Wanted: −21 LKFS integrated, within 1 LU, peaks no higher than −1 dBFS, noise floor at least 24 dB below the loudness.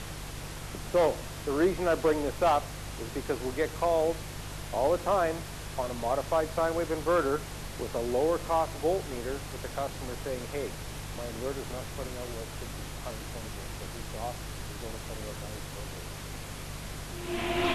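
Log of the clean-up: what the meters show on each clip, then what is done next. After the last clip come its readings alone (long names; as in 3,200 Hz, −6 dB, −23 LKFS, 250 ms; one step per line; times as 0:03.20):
mains hum 50 Hz; hum harmonics up to 150 Hz; level of the hum −41 dBFS; background noise floor −41 dBFS; target noise floor −56 dBFS; integrated loudness −32.0 LKFS; sample peak −13.5 dBFS; target loudness −21.0 LKFS
→ hum removal 50 Hz, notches 3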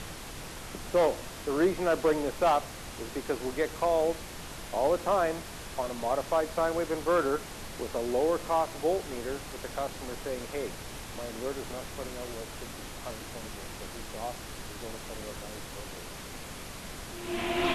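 mains hum none found; background noise floor −43 dBFS; target noise floor −56 dBFS
→ noise reduction from a noise print 13 dB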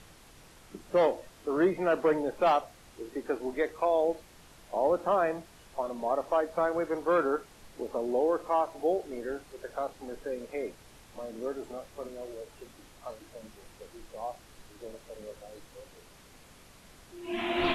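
background noise floor −55 dBFS; integrated loudness −31.0 LKFS; sample peak −14.0 dBFS; target loudness −21.0 LKFS
→ level +10 dB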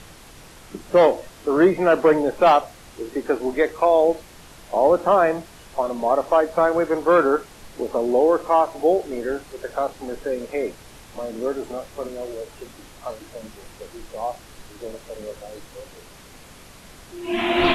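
integrated loudness −21.0 LKFS; sample peak −4.0 dBFS; background noise floor −45 dBFS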